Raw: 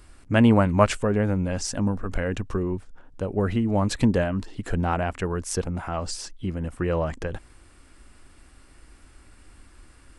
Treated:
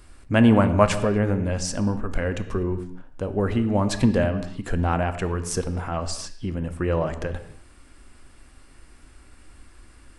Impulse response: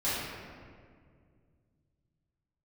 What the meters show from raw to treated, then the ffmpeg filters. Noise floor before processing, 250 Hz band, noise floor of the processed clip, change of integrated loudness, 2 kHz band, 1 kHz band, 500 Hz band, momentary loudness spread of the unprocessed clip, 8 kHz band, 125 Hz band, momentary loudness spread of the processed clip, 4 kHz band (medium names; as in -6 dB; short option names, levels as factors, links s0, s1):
-53 dBFS, +1.0 dB, -51 dBFS, +1.0 dB, +1.0 dB, +1.0 dB, +1.5 dB, 12 LU, +1.0 dB, +1.0 dB, 13 LU, +1.0 dB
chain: -filter_complex "[0:a]asplit=2[s0][s1];[1:a]atrim=start_sample=2205,afade=t=out:st=0.31:d=0.01,atrim=end_sample=14112[s2];[s1][s2]afir=irnorm=-1:irlink=0,volume=0.133[s3];[s0][s3]amix=inputs=2:normalize=0"